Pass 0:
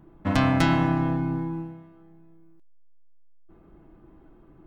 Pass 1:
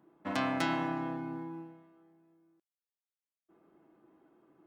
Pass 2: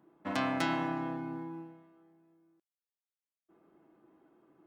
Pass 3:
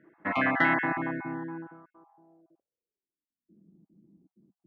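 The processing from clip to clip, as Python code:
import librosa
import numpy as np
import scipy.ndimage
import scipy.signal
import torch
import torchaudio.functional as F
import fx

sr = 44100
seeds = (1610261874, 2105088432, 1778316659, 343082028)

y1 = scipy.signal.sosfilt(scipy.signal.butter(2, 280.0, 'highpass', fs=sr, output='sos'), x)
y1 = y1 * librosa.db_to_amplitude(-7.5)
y2 = y1
y3 = fx.spec_dropout(y2, sr, seeds[0], share_pct=22)
y3 = fx.filter_sweep_lowpass(y3, sr, from_hz=1900.0, to_hz=190.0, start_s=1.44, end_s=3.64, q=4.8)
y3 = y3 * librosa.db_to_amplitude(4.0)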